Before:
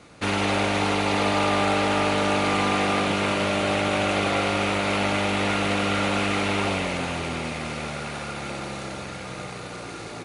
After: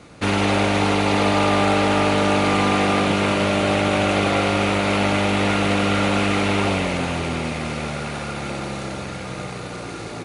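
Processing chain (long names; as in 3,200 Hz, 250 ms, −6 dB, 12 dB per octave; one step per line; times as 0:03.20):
low-shelf EQ 480 Hz +4 dB
level +2.5 dB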